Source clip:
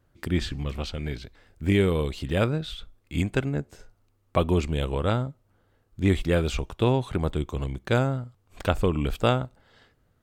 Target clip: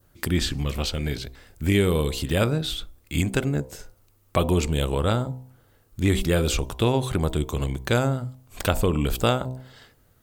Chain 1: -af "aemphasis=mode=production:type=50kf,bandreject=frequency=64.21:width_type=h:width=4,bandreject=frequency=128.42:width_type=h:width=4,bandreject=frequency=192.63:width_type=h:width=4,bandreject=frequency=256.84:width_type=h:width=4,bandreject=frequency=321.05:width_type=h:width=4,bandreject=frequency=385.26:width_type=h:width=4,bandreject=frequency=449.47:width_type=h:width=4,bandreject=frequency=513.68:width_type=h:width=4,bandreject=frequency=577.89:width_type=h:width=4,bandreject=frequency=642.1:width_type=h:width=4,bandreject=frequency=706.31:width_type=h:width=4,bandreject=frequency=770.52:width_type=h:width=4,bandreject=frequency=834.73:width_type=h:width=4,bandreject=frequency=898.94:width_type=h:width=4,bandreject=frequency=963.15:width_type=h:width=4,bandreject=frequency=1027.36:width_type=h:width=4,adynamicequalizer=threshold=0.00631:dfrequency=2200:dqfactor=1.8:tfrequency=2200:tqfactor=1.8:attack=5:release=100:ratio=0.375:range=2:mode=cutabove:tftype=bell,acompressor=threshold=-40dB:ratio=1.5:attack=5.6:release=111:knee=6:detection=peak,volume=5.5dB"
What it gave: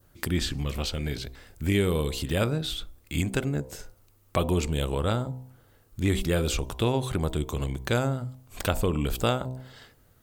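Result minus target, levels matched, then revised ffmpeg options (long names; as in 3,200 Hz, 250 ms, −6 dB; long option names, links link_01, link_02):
downward compressor: peak gain reduction +3.5 dB
-af "aemphasis=mode=production:type=50kf,bandreject=frequency=64.21:width_type=h:width=4,bandreject=frequency=128.42:width_type=h:width=4,bandreject=frequency=192.63:width_type=h:width=4,bandreject=frequency=256.84:width_type=h:width=4,bandreject=frequency=321.05:width_type=h:width=4,bandreject=frequency=385.26:width_type=h:width=4,bandreject=frequency=449.47:width_type=h:width=4,bandreject=frequency=513.68:width_type=h:width=4,bandreject=frequency=577.89:width_type=h:width=4,bandreject=frequency=642.1:width_type=h:width=4,bandreject=frequency=706.31:width_type=h:width=4,bandreject=frequency=770.52:width_type=h:width=4,bandreject=frequency=834.73:width_type=h:width=4,bandreject=frequency=898.94:width_type=h:width=4,bandreject=frequency=963.15:width_type=h:width=4,bandreject=frequency=1027.36:width_type=h:width=4,adynamicequalizer=threshold=0.00631:dfrequency=2200:dqfactor=1.8:tfrequency=2200:tqfactor=1.8:attack=5:release=100:ratio=0.375:range=2:mode=cutabove:tftype=bell,acompressor=threshold=-29dB:ratio=1.5:attack=5.6:release=111:knee=6:detection=peak,volume=5.5dB"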